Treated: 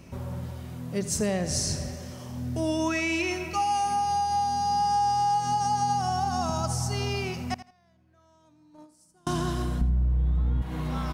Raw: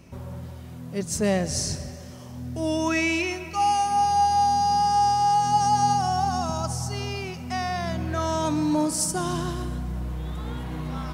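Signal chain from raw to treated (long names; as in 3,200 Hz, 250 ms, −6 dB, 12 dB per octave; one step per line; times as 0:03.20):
0:07.54–0:09.27: noise gate −17 dBFS, range −37 dB
0:09.81–0:10.62: RIAA equalisation playback
downward compressor 6 to 1, threshold −25 dBFS, peak gain reduction 11 dB
repeating echo 82 ms, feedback 20%, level −14.5 dB
level +1.5 dB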